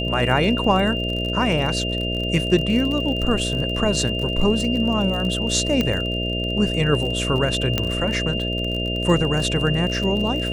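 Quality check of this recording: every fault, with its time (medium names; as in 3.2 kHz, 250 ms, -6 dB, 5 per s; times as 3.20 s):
buzz 60 Hz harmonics 11 -26 dBFS
crackle 43 per s -27 dBFS
whine 2.8 kHz -26 dBFS
5.81 s: pop -8 dBFS
7.78 s: pop -6 dBFS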